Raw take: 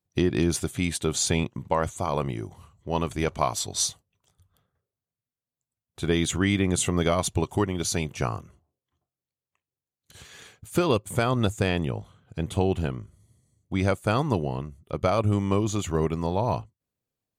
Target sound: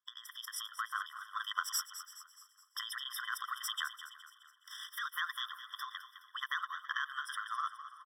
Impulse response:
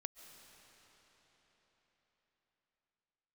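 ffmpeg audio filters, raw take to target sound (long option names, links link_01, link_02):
-filter_complex "[0:a]highpass=110,highshelf=frequency=4100:width_type=q:width=1.5:gain=-9,acompressor=threshold=-33dB:ratio=20,asuperstop=centerf=3100:order=12:qfactor=3.5,atempo=1.6,asplit=2[link_01][link_02];[link_02]aecho=0:1:451|902|1353:0.0841|0.0311|0.0115[link_03];[link_01][link_03]amix=inputs=2:normalize=0,asetrate=59535,aresample=44100,dynaudnorm=framelen=360:gausssize=5:maxgain=5.5dB,asplit=6[link_04][link_05][link_06][link_07][link_08][link_09];[link_05]adelay=209,afreqshift=-49,volume=-12dB[link_10];[link_06]adelay=418,afreqshift=-98,volume=-18.2dB[link_11];[link_07]adelay=627,afreqshift=-147,volume=-24.4dB[link_12];[link_08]adelay=836,afreqshift=-196,volume=-30.6dB[link_13];[link_09]adelay=1045,afreqshift=-245,volume=-36.8dB[link_14];[link_04][link_10][link_11][link_12][link_13][link_14]amix=inputs=6:normalize=0,afftfilt=real='re*eq(mod(floor(b*sr/1024/1000),2),1)':imag='im*eq(mod(floor(b*sr/1024/1000),2),1)':win_size=1024:overlap=0.75,volume=3.5dB"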